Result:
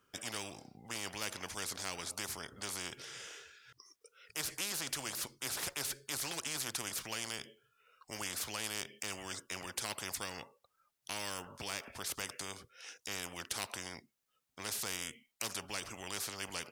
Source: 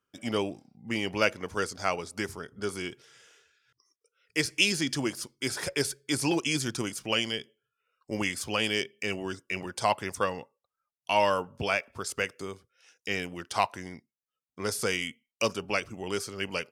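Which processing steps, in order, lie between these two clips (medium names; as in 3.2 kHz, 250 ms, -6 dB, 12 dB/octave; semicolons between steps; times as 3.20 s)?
spectrum-flattening compressor 4:1; trim -8.5 dB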